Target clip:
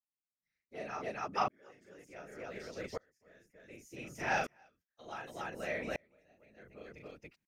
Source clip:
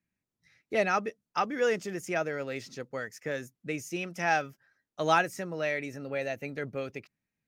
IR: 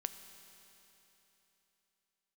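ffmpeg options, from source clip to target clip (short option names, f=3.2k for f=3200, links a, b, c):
-filter_complex "[0:a]asettb=1/sr,asplit=3[a][b][c];[a]atrim=end=4.374[d];[b]atrim=start=4.37:end=5.03,asetpts=PTS-STARTPTS,afade=t=in:d=0.004:c=qsin,afade=t=out:st=0.656:d=0.004:c=qsin,equalizer=f=4.3k:w=0.65:g=6.5[e];[c]atrim=start=5.026[f];[d][e]acrossfade=d=0.004:c1=hsin:c2=qsin[g];[g][f]acrossfade=d=0.004:c1=qsin:c2=hsin,asettb=1/sr,asplit=3[h][i][j];[h]atrim=end=5.774[k];[i]atrim=start=5.77:end=6.56,asetpts=PTS-STARTPTS,afade=t=in:d=0.004:c=qsin,afade=t=out:st=0.786:d=0.004:c=qsin,acompressor=threshold=-35dB:ratio=4[l];[j]atrim=start=6.556[m];[k][l]acrossfade=d=0.004:c1=hsin:c2=qsin[n];[n][m]acrossfade=d=0.004:c1=qsin:c2=hsin,afftfilt=real='hypot(re,im)*cos(2*PI*random(0))':imag='hypot(re,im)*sin(2*PI*random(1))':win_size=512:overlap=0.75,asplit=2[o][p];[p]aecho=0:1:37.9|282.8:0.631|0.708[q];[o][q]amix=inputs=2:normalize=0,aeval=exprs='val(0)*pow(10,-34*if(lt(mod(-0.67*n/s,1),2*abs(-0.67)/1000),1-mod(-0.67*n/s,1)/(2*abs(-0.67)/1000),(mod(-0.67*n/s,1)-2*abs(-0.67)/1000)/(1-2*abs(-0.67)/1000))/20)':c=same,volume=2.5dB"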